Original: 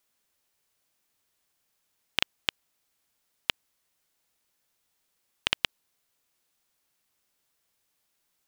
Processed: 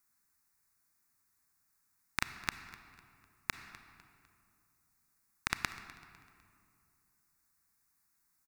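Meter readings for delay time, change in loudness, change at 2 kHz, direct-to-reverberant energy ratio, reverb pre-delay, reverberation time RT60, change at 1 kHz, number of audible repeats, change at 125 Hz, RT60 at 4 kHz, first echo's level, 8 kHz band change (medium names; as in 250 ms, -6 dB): 251 ms, -8.5 dB, -4.5 dB, 10.0 dB, 29 ms, 2.4 s, -1.0 dB, 2, +1.0 dB, 1.5 s, -19.5 dB, -1.0 dB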